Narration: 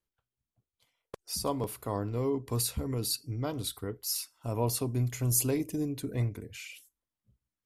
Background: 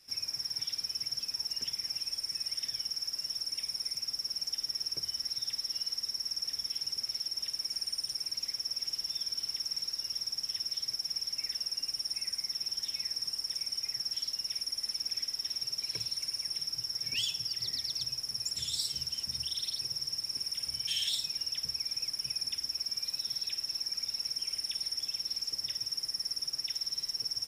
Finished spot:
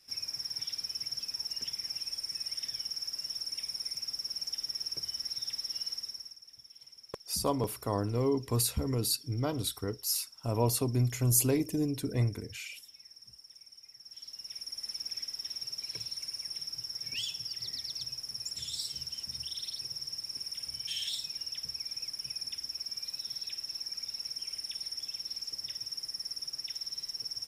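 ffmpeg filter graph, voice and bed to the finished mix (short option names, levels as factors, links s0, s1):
-filter_complex "[0:a]adelay=6000,volume=1.19[s0];[1:a]volume=4.47,afade=t=out:st=5.89:d=0.49:silence=0.149624,afade=t=in:st=13.99:d=0.94:silence=0.188365[s1];[s0][s1]amix=inputs=2:normalize=0"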